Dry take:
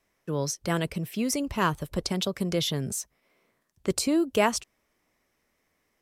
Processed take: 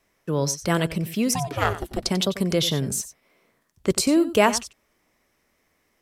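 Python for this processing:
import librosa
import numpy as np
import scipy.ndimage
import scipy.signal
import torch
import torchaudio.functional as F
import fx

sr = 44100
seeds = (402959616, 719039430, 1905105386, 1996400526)

y = fx.ring_mod(x, sr, carrier_hz=fx.line((1.33, 500.0), (2.02, 150.0)), at=(1.33, 2.02), fade=0.02)
y = y + 10.0 ** (-14.0 / 20.0) * np.pad(y, (int(92 * sr / 1000.0), 0))[:len(y)]
y = y * 10.0 ** (5.0 / 20.0)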